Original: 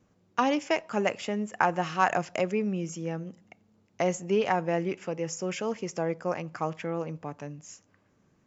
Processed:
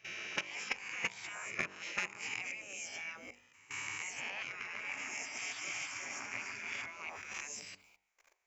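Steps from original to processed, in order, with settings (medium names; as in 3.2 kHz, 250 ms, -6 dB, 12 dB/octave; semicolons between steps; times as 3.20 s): reverse spectral sustain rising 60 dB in 0.93 s; treble shelf 5.7 kHz +10.5 dB; 4.46–6.86 s: multi-head delay 142 ms, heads first and second, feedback 45%, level -7 dB; level held to a coarse grid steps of 21 dB; spectral gate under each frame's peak -15 dB weak; saturation -18 dBFS, distortion -24 dB; peaking EQ 2.3 kHz +12.5 dB 0.38 oct; de-hum 48.48 Hz, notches 22; compression 12:1, threshold -38 dBFS, peak gain reduction 14 dB; trim +5 dB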